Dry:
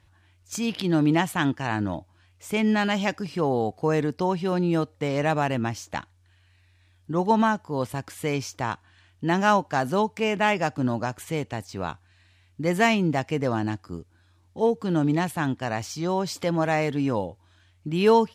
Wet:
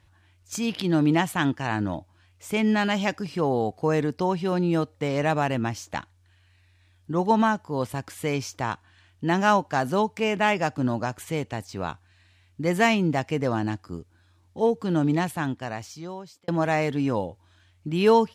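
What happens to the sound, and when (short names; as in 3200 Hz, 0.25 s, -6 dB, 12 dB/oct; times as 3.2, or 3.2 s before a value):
15.2–16.48 fade out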